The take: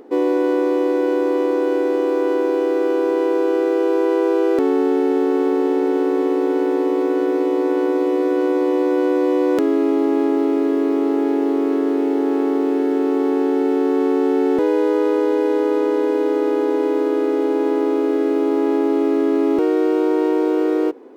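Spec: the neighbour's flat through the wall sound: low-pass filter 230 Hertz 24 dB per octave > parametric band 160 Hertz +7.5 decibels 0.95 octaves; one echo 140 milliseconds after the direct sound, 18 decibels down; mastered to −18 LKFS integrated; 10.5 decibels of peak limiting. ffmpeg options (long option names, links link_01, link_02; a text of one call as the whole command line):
ffmpeg -i in.wav -af "alimiter=limit=-16.5dB:level=0:latency=1,lowpass=frequency=230:width=0.5412,lowpass=frequency=230:width=1.3066,equalizer=frequency=160:width_type=o:width=0.95:gain=7.5,aecho=1:1:140:0.126,volume=17dB" out.wav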